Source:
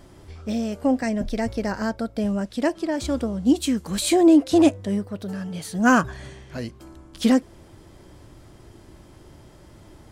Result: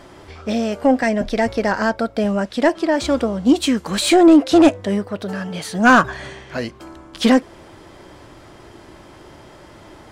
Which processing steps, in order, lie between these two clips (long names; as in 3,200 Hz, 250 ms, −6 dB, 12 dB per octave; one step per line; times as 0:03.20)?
mid-hump overdrive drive 14 dB, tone 2,600 Hz, clips at −5.5 dBFS
level +4 dB